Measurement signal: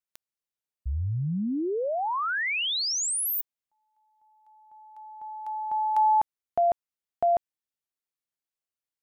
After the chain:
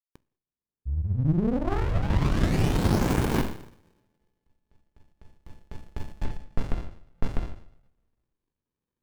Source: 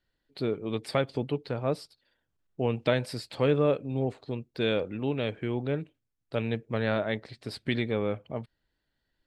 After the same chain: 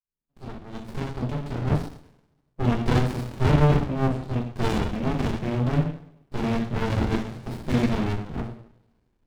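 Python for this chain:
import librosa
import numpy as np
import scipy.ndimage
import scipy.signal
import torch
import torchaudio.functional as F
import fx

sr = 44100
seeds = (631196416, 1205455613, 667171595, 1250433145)

y = fx.fade_in_head(x, sr, length_s=2.03)
y = fx.rev_double_slope(y, sr, seeds[0], early_s=0.58, late_s=1.5, knee_db=-24, drr_db=-4.5)
y = fx.running_max(y, sr, window=65)
y = y * librosa.db_to_amplitude(4.5)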